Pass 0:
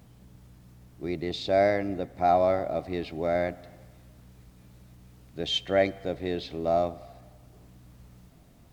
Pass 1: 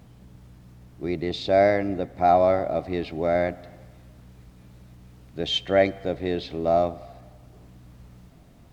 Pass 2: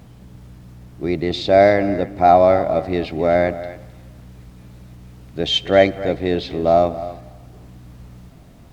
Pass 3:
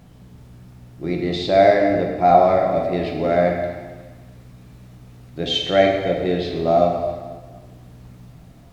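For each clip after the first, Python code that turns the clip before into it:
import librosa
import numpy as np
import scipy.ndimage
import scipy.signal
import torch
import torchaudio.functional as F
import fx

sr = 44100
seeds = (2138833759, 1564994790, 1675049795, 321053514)

y1 = fx.high_shelf(x, sr, hz=6000.0, db=-6.5)
y1 = F.gain(torch.from_numpy(y1), 4.0).numpy()
y2 = y1 + 10.0 ** (-15.0 / 20.0) * np.pad(y1, (int(262 * sr / 1000.0), 0))[:len(y1)]
y2 = F.gain(torch.from_numpy(y2), 6.5).numpy()
y3 = fx.rev_plate(y2, sr, seeds[0], rt60_s=1.3, hf_ratio=0.9, predelay_ms=0, drr_db=0.0)
y3 = F.gain(torch.from_numpy(y3), -4.5).numpy()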